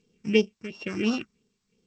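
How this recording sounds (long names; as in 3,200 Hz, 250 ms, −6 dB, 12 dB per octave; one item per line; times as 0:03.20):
a buzz of ramps at a fixed pitch in blocks of 16 samples
phaser sweep stages 4, 2.9 Hz, lowest notch 510–2,000 Hz
tremolo triangle 1.1 Hz, depth 80%
G.722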